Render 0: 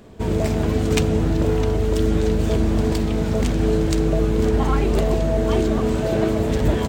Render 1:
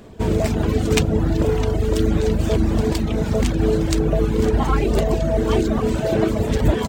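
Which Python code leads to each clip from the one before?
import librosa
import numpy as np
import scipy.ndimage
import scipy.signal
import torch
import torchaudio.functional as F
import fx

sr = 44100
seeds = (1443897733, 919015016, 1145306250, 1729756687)

y = fx.dereverb_blind(x, sr, rt60_s=0.86)
y = y * 10.0 ** (3.0 / 20.0)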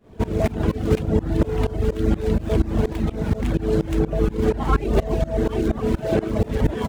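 y = scipy.signal.medfilt(x, 9)
y = fx.tremolo_shape(y, sr, shape='saw_up', hz=4.2, depth_pct=95)
y = y * 10.0 ** (2.0 / 20.0)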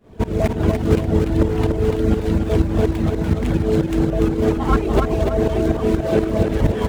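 y = fx.echo_feedback(x, sr, ms=291, feedback_pct=36, wet_db=-4.5)
y = y * 10.0 ** (2.0 / 20.0)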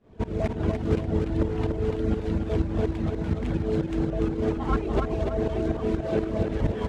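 y = fx.air_absorb(x, sr, metres=64.0)
y = y * 10.0 ** (-8.0 / 20.0)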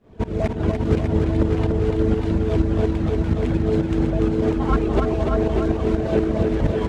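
y = x + 10.0 ** (-5.5 / 20.0) * np.pad(x, (int(598 * sr / 1000.0), 0))[:len(x)]
y = y * 10.0 ** (4.5 / 20.0)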